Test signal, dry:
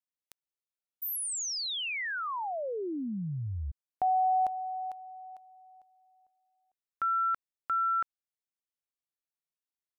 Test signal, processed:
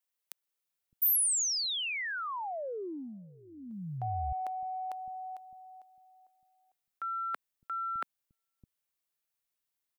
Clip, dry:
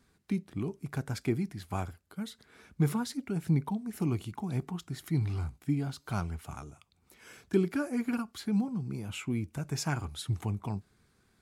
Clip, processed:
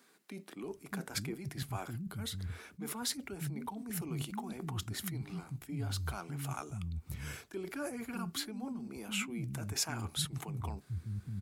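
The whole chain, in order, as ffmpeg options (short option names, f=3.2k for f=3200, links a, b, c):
-filter_complex "[0:a]bass=f=250:g=0,treble=f=4k:g=-7,areverse,acompressor=threshold=-42dB:ratio=6:attack=19:release=39:knee=1:detection=rms,areverse,crystalizer=i=2:c=0,aeval=exprs='0.1*(cos(1*acos(clip(val(0)/0.1,-1,1)))-cos(1*PI/2))+0.001*(cos(7*acos(clip(val(0)/0.1,-1,1)))-cos(7*PI/2))':c=same,acrossover=split=230[a][b];[a]adelay=610[c];[c][b]amix=inputs=2:normalize=0,volume=5dB"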